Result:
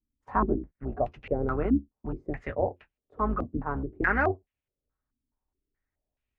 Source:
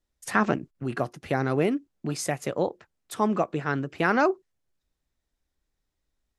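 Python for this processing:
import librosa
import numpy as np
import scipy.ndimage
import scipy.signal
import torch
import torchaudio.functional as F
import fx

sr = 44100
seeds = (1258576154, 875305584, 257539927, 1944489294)

y = fx.octave_divider(x, sr, octaves=2, level_db=2.0)
y = fx.notch_comb(y, sr, f0_hz=170.0)
y = fx.filter_held_lowpass(y, sr, hz=4.7, low_hz=260.0, high_hz=2600.0)
y = F.gain(torch.from_numpy(y), -6.5).numpy()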